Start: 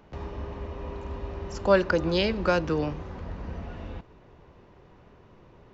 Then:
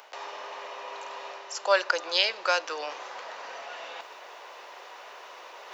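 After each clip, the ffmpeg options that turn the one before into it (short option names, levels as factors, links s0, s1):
-af "highpass=f=600:w=0.5412,highpass=f=600:w=1.3066,highshelf=f=2900:g=11.5,areverse,acompressor=mode=upward:threshold=0.0251:ratio=2.5,areverse"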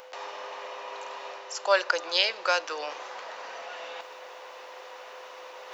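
-af "aeval=exprs='val(0)+0.00447*sin(2*PI*510*n/s)':c=same"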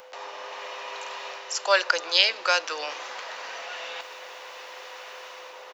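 -filter_complex "[0:a]acrossover=split=510|1500[s0][s1][s2];[s1]asplit=5[s3][s4][s5][s6][s7];[s4]adelay=151,afreqshift=-72,volume=0.0708[s8];[s5]adelay=302,afreqshift=-144,volume=0.0403[s9];[s6]adelay=453,afreqshift=-216,volume=0.0229[s10];[s7]adelay=604,afreqshift=-288,volume=0.0132[s11];[s3][s8][s9][s10][s11]amix=inputs=5:normalize=0[s12];[s2]dynaudnorm=f=150:g=7:m=2.24[s13];[s0][s12][s13]amix=inputs=3:normalize=0"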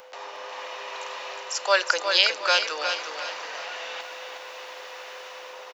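-af "aecho=1:1:361|722|1083|1444|1805:0.473|0.194|0.0795|0.0326|0.0134"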